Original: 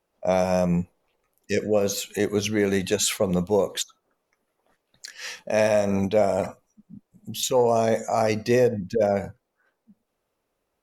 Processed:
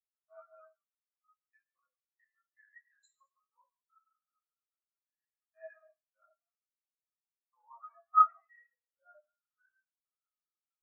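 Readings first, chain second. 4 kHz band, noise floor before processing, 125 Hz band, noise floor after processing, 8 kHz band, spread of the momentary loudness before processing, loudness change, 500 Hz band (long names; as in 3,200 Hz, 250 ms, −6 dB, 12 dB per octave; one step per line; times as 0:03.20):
below −40 dB, −78 dBFS, below −40 dB, below −85 dBFS, below −40 dB, 14 LU, −3.5 dB, −39.5 dB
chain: converter with a step at zero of −31.5 dBFS
output level in coarse steps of 21 dB
four-pole ladder high-pass 1,100 Hz, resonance 60%
reverb whose tail is shaped and stops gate 430 ms falling, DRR −4 dB
every bin expanded away from the loudest bin 4 to 1
level +6.5 dB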